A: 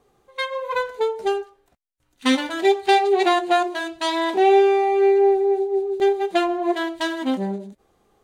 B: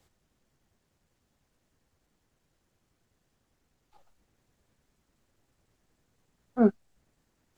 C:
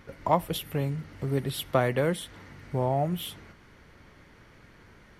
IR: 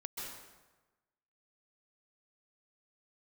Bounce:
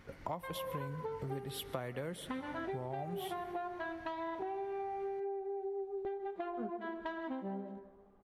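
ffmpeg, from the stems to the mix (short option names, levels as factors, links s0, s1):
-filter_complex "[0:a]lowpass=1100,equalizer=f=290:w=0.37:g=-10,acompressor=threshold=0.0178:ratio=3,adelay=50,volume=0.891,asplit=2[s0][s1];[s1]volume=0.376[s2];[1:a]volume=0.158,asplit=2[s3][s4];[s4]volume=0.422[s5];[2:a]volume=0.501,asplit=2[s6][s7];[s7]volume=0.158[s8];[3:a]atrim=start_sample=2205[s9];[s2][s5][s8]amix=inputs=3:normalize=0[s10];[s10][s9]afir=irnorm=-1:irlink=0[s11];[s0][s3][s6][s11]amix=inputs=4:normalize=0,acompressor=threshold=0.0141:ratio=6"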